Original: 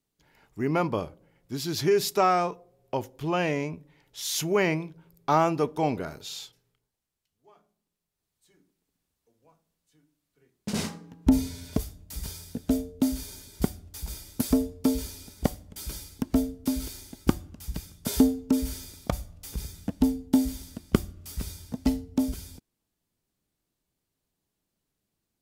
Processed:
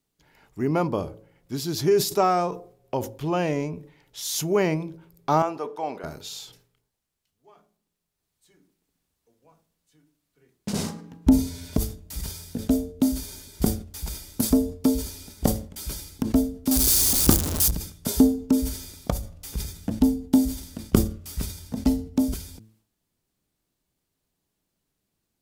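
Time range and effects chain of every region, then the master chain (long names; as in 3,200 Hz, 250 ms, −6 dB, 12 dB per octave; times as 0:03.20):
0:05.42–0:06.04: high-pass filter 920 Hz + spectral tilt −3.5 dB per octave
0:16.71–0:17.71: converter with a step at zero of −25.5 dBFS + high-shelf EQ 2,700 Hz +10.5 dB
whole clip: hum removal 109.3 Hz, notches 5; dynamic equaliser 2,200 Hz, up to −7 dB, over −46 dBFS, Q 0.79; level that may fall only so fast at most 120 dB per second; level +3 dB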